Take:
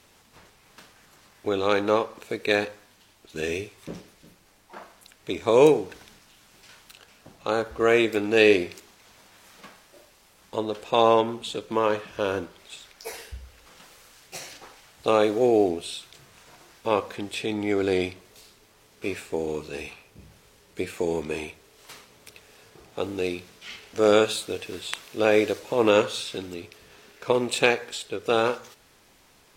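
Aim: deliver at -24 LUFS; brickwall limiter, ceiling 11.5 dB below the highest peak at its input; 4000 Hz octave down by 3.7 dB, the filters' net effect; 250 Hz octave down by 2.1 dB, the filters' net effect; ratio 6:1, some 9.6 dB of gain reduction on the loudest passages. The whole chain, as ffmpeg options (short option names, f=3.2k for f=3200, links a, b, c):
-af "equalizer=f=250:t=o:g=-3,equalizer=f=4k:t=o:g=-4.5,acompressor=threshold=-23dB:ratio=6,volume=10dB,alimiter=limit=-10dB:level=0:latency=1"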